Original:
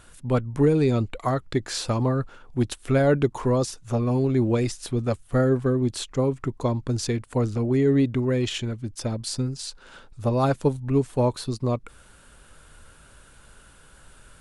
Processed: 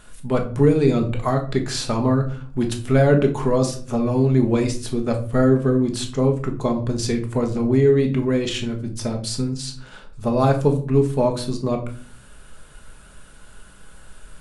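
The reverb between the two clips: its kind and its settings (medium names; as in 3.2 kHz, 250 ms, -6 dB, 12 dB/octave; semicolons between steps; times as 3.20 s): simulated room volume 390 m³, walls furnished, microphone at 1.4 m; trim +1.5 dB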